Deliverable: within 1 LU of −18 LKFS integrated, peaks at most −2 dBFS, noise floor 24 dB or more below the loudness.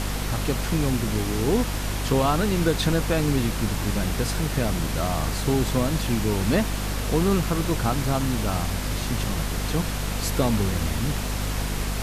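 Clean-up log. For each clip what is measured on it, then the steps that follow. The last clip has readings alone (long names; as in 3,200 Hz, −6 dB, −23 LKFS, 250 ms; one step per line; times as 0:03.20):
mains hum 50 Hz; hum harmonics up to 250 Hz; level of the hum −26 dBFS; background noise floor −28 dBFS; target noise floor −49 dBFS; integrated loudness −25.0 LKFS; sample peak −8.5 dBFS; target loudness −18.0 LKFS
→ mains-hum notches 50/100/150/200/250 Hz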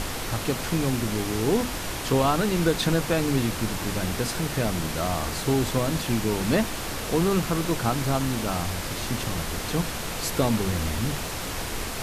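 mains hum none found; background noise floor −32 dBFS; target noise floor −50 dBFS
→ noise reduction from a noise print 18 dB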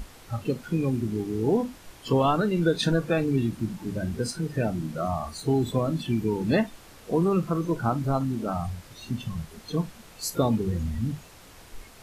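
background noise floor −50 dBFS; target noise floor −52 dBFS
→ noise reduction from a noise print 6 dB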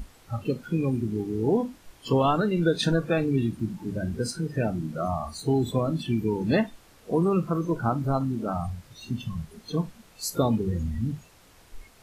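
background noise floor −55 dBFS; integrated loudness −27.5 LKFS; sample peak −10.5 dBFS; target loudness −18.0 LKFS
→ level +9.5 dB
brickwall limiter −2 dBFS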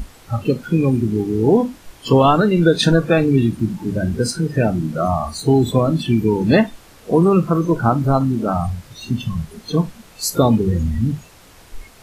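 integrated loudness −18.0 LKFS; sample peak −2.0 dBFS; background noise floor −46 dBFS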